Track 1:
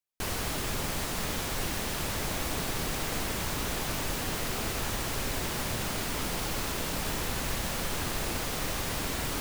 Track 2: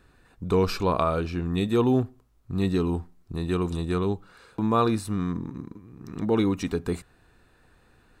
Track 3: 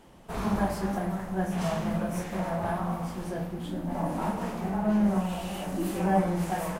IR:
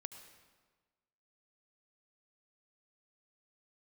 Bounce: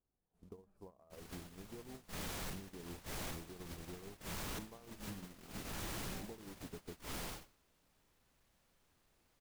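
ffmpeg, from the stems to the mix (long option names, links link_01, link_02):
-filter_complex "[0:a]asoftclip=type=hard:threshold=-26.5dB,adelay=900,volume=-10dB,afade=type=out:start_time=7.19:duration=0.38:silence=0.237137[link_01];[1:a]acompressor=threshold=-24dB:ratio=12,lowpass=frequency=740:width_type=q:width=1.7,acrusher=bits=6:mode=log:mix=0:aa=0.000001,volume=-12.5dB,asplit=2[link_02][link_03];[2:a]equalizer=frequency=1100:width=0.38:gain=-14,adelay=50,volume=-18dB[link_04];[link_03]apad=whole_len=454515[link_05];[link_01][link_05]sidechaincompress=threshold=-45dB:ratio=5:attack=5.9:release=248[link_06];[link_02][link_04]amix=inputs=2:normalize=0,acompressor=threshold=-45dB:ratio=10,volume=0dB[link_07];[link_06][link_07]amix=inputs=2:normalize=0,agate=range=-20dB:threshold=-45dB:ratio=16:detection=peak,asoftclip=type=hard:threshold=-38dB"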